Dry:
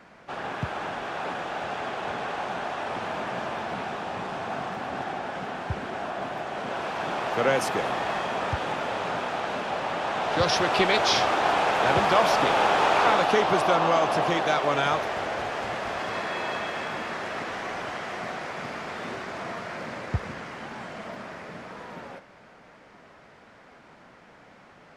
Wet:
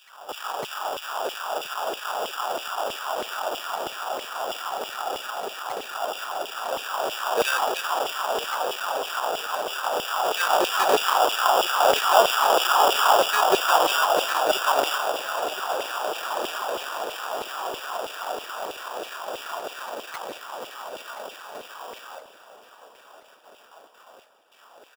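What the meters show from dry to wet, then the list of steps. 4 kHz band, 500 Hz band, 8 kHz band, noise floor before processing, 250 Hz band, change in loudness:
+4.5 dB, +1.0 dB, +8.5 dB, -52 dBFS, -7.0 dB, +2.0 dB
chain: gate with hold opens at -42 dBFS; reverse echo 554 ms -16 dB; sample-rate reducer 2.1 kHz, jitter 0%; LFO high-pass saw down 3.1 Hz 390–3000 Hz; feedback delay 1023 ms, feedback 52%, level -16 dB

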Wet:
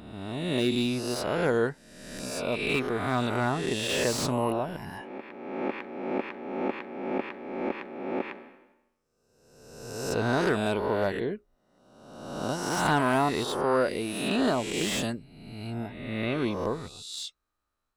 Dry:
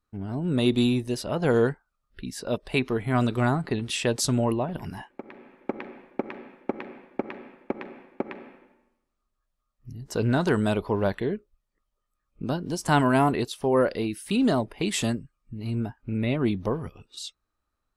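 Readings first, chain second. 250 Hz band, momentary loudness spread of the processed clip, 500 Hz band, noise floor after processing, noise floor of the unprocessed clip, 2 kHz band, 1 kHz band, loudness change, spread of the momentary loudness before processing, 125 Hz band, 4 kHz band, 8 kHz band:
-4.0 dB, 14 LU, -1.0 dB, -75 dBFS, -80 dBFS, +1.0 dB, 0.0 dB, -2.5 dB, 17 LU, -6.5 dB, +1.0 dB, -1.0 dB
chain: reverse spectral sustain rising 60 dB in 1.22 s; bass shelf 250 Hz -6 dB; slew-rate limiter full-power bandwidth 230 Hz; trim -3 dB

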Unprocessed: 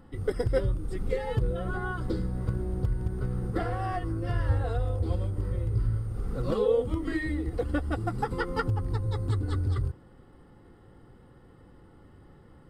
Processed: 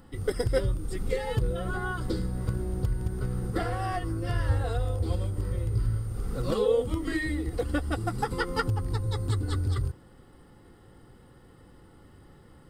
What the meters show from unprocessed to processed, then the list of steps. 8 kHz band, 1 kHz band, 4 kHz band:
no reading, +1.0 dB, +6.0 dB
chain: treble shelf 3.2 kHz +10.5 dB

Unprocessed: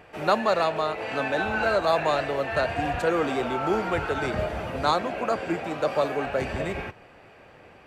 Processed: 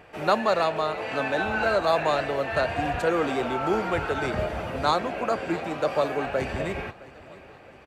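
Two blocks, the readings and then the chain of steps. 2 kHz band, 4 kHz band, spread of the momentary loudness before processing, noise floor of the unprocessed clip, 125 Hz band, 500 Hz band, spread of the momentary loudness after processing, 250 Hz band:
0.0 dB, 0.0 dB, 7 LU, -52 dBFS, 0.0 dB, 0.0 dB, 7 LU, 0.0 dB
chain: feedback delay 663 ms, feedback 49%, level -20.5 dB

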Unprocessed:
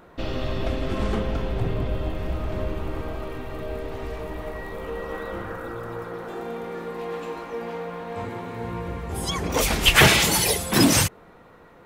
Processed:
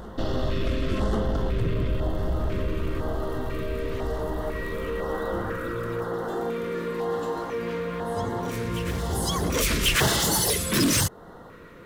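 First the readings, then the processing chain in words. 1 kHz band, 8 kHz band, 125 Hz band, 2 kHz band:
-2.0 dB, -1.5 dB, -0.5 dB, -6.0 dB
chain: in parallel at -0.5 dB: compression, threshold -31 dBFS, peak gain reduction 19 dB; on the sum: saturation -17 dBFS, distortion -10 dB; LFO notch square 1 Hz 790–2400 Hz; reverse echo 1093 ms -17 dB

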